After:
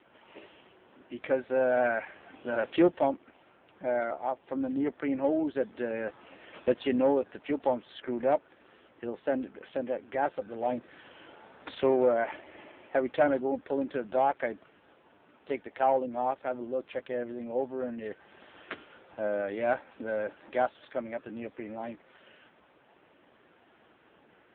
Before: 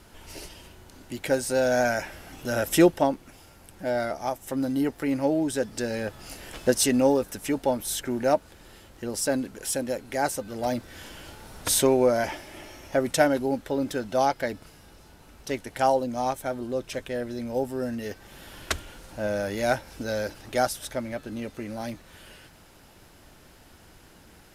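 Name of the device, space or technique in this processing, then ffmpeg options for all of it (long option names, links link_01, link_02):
telephone: -af "highpass=270,lowpass=3200,highshelf=frequency=8000:gain=-3.5,asoftclip=type=tanh:threshold=-13dB,volume=-1dB" -ar 8000 -c:a libopencore_amrnb -b:a 5900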